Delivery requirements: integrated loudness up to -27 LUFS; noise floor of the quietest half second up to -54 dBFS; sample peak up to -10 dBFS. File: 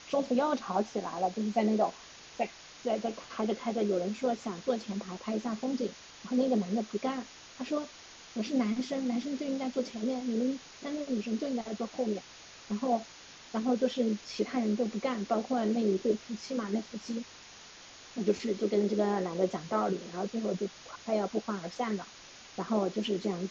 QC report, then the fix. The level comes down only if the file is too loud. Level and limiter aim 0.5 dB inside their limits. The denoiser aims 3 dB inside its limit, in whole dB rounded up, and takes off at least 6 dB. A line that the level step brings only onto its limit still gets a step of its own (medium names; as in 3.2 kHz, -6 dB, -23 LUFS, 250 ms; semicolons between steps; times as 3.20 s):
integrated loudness -32.5 LUFS: pass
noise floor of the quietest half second -51 dBFS: fail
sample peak -15.0 dBFS: pass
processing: noise reduction 6 dB, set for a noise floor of -51 dBFS